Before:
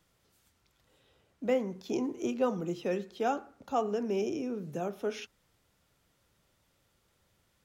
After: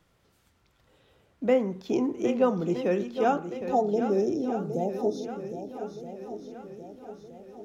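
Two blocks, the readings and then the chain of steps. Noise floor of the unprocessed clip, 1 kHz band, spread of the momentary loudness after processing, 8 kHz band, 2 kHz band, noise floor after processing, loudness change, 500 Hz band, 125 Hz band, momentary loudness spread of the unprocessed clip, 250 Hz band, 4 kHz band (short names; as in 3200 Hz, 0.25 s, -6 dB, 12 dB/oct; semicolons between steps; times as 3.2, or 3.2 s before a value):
-73 dBFS, +6.0 dB, 18 LU, n/a, +3.5 dB, -67 dBFS, +5.5 dB, +6.5 dB, +6.5 dB, 6 LU, +6.5 dB, +1.0 dB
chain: spectral delete 3.6–5.67, 920–3500 Hz; high shelf 3800 Hz -9 dB; swung echo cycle 1.27 s, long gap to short 1.5:1, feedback 45%, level -10 dB; gain +6 dB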